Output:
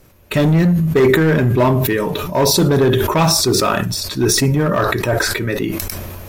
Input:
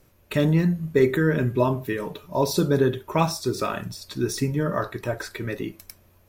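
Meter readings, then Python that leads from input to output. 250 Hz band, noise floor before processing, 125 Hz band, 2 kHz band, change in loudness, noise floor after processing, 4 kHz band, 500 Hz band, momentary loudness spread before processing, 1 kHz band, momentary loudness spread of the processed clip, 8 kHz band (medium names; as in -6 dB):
+8.0 dB, -58 dBFS, +9.0 dB, +10.5 dB, +9.0 dB, -36 dBFS, +15.0 dB, +8.0 dB, 11 LU, +9.0 dB, 8 LU, +16.0 dB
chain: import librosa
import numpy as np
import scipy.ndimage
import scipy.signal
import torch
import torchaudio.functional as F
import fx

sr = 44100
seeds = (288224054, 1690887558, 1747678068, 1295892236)

p1 = 10.0 ** (-19.5 / 20.0) * (np.abs((x / 10.0 ** (-19.5 / 20.0) + 3.0) % 4.0 - 2.0) - 1.0)
p2 = x + (p1 * librosa.db_to_amplitude(-4.0))
p3 = fx.sustainer(p2, sr, db_per_s=23.0)
y = p3 * librosa.db_to_amplitude(4.5)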